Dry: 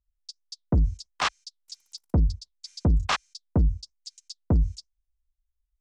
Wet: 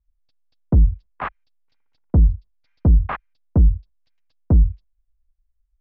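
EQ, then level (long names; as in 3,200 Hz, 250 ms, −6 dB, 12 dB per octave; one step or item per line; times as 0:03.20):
low-pass filter 2,100 Hz 24 dB per octave
spectral tilt −2 dB per octave
0.0 dB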